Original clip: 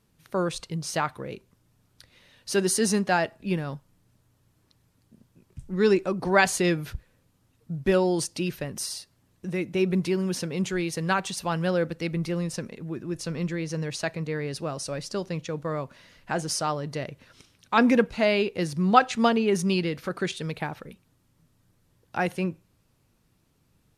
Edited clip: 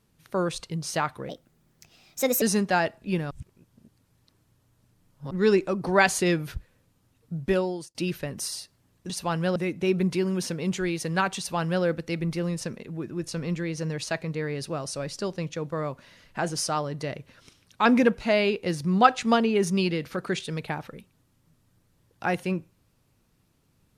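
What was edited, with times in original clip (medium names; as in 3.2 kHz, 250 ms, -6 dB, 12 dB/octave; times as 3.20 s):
1.29–2.80 s: speed 134%
3.69–5.69 s: reverse
7.81–8.33 s: fade out
11.30–11.76 s: copy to 9.48 s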